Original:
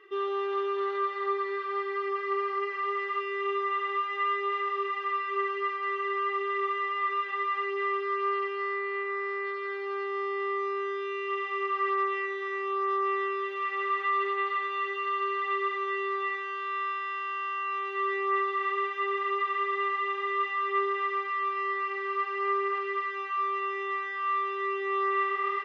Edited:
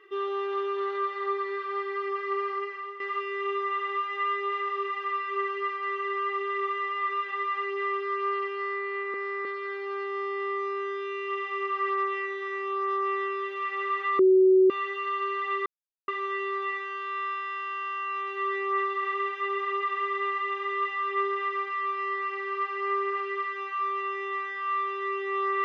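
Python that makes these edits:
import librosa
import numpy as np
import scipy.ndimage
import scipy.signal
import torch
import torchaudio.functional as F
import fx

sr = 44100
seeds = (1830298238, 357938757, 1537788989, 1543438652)

y = fx.edit(x, sr, fx.fade_out_to(start_s=2.51, length_s=0.49, floor_db=-13.5),
    fx.reverse_span(start_s=9.14, length_s=0.31),
    fx.bleep(start_s=14.19, length_s=0.51, hz=376.0, db=-15.0),
    fx.insert_silence(at_s=15.66, length_s=0.42), tone=tone)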